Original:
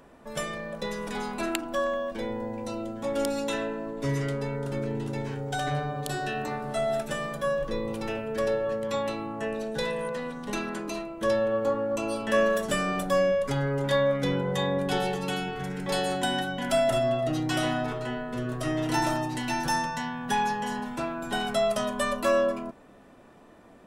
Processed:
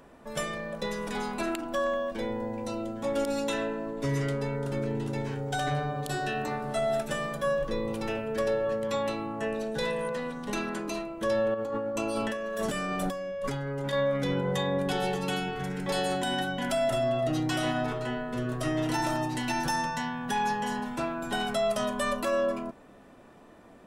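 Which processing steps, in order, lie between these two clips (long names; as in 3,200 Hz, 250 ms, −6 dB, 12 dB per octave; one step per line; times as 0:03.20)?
brickwall limiter −19.5 dBFS, peak gain reduction 8.5 dB
0:11.54–0:13.93: compressor whose output falls as the input rises −32 dBFS, ratio −1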